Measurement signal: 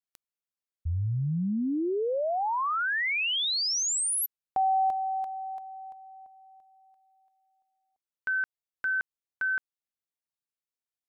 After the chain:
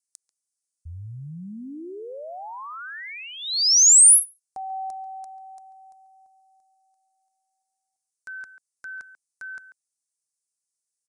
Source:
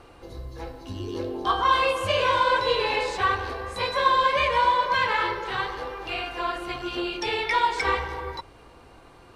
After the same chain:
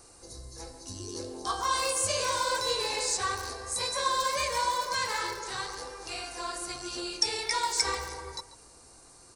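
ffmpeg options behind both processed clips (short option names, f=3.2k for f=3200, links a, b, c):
-filter_complex "[0:a]aresample=22050,aresample=44100,asplit=2[a][b];[b]adelay=140,highpass=300,lowpass=3.4k,asoftclip=type=hard:threshold=-18.5dB,volume=-12dB[c];[a][c]amix=inputs=2:normalize=0,aexciter=amount=15.8:drive=4.7:freq=4.8k,volume=-8.5dB"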